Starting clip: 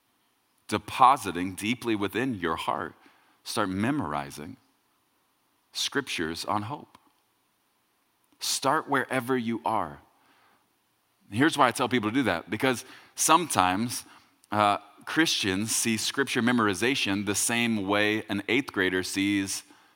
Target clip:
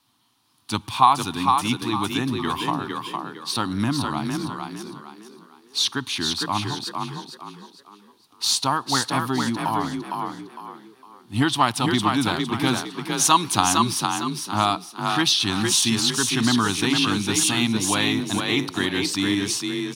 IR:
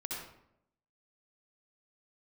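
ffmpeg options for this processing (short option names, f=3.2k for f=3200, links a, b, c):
-filter_complex "[0:a]equalizer=f=125:t=o:w=1:g=8,equalizer=f=250:t=o:w=1:g=4,equalizer=f=500:t=o:w=1:g=-9,equalizer=f=1k:t=o:w=1:g=6,equalizer=f=2k:t=o:w=1:g=-5,equalizer=f=4k:t=o:w=1:g=9,equalizer=f=8k:t=o:w=1:g=4,asplit=2[a][b];[b]asplit=4[c][d][e][f];[c]adelay=457,afreqshift=33,volume=-4dB[g];[d]adelay=914,afreqshift=66,volume=-13.4dB[h];[e]adelay=1371,afreqshift=99,volume=-22.7dB[i];[f]adelay=1828,afreqshift=132,volume=-32.1dB[j];[g][h][i][j]amix=inputs=4:normalize=0[k];[a][k]amix=inputs=2:normalize=0"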